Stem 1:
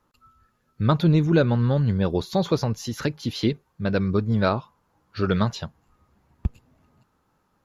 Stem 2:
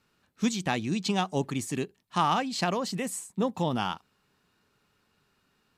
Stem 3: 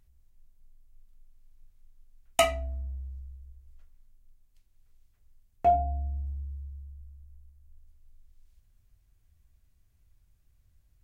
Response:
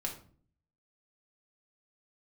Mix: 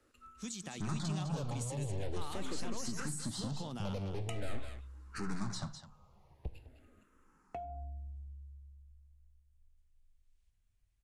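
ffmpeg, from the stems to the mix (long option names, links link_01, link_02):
-filter_complex "[0:a]equalizer=frequency=2000:width=0.35:gain=6.5,aeval=exprs='(tanh(31.6*val(0)+0.6)-tanh(0.6))/31.6':channel_layout=same,asplit=2[link_01][link_02];[link_02]afreqshift=-0.44[link_03];[link_01][link_03]amix=inputs=2:normalize=1,volume=2dB,asplit=3[link_04][link_05][link_06];[link_05]volume=-16.5dB[link_07];[link_06]volume=-19.5dB[link_08];[1:a]highshelf=frequency=7100:gain=8.5,alimiter=limit=-21dB:level=0:latency=1:release=38,acontrast=71,volume=-19.5dB,asplit=2[link_09][link_10];[link_10]volume=-10dB[link_11];[2:a]equalizer=frequency=2900:width_type=o:width=2.2:gain=15,adelay=1900,volume=-12dB[link_12];[link_04][link_12]amix=inputs=2:normalize=0,equalizer=frequency=4000:width_type=o:width=2.7:gain=-12,acompressor=threshold=-37dB:ratio=6,volume=0dB[link_13];[3:a]atrim=start_sample=2205[link_14];[link_07][link_14]afir=irnorm=-1:irlink=0[link_15];[link_08][link_11]amix=inputs=2:normalize=0,aecho=0:1:205:1[link_16];[link_09][link_13][link_15][link_16]amix=inputs=4:normalize=0,lowpass=frequency=9500:width=0.5412,lowpass=frequency=9500:width=1.3066,highshelf=frequency=6400:gain=12,acrossover=split=230[link_17][link_18];[link_18]acompressor=threshold=-40dB:ratio=6[link_19];[link_17][link_19]amix=inputs=2:normalize=0"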